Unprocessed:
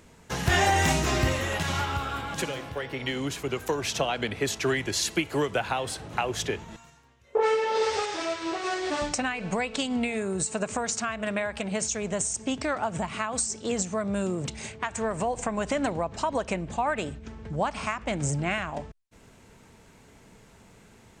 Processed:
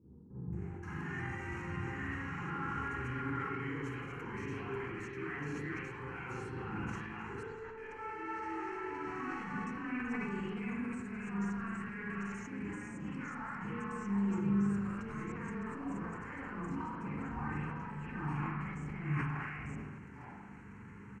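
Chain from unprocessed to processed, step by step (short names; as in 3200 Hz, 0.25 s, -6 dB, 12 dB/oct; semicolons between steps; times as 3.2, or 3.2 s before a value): reverse delay 0.493 s, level -3 dB; HPF 92 Hz 12 dB/oct; high shelf 4500 Hz +6 dB; notch 4900 Hz, Q 5.6; reverse; compressor 6:1, threshold -36 dBFS, peak gain reduction 17 dB; reverse; limiter -33 dBFS, peak gain reduction 11.5 dB; in parallel at -8 dB: bit-crush 7-bit; on the sum: tape spacing loss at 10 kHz 22 dB; fixed phaser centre 1500 Hz, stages 4; bands offset in time lows, highs 0.53 s, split 570 Hz; reverb RT60 1.1 s, pre-delay 40 ms, DRR -9 dB; sustainer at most 30 dB/s; gain -4.5 dB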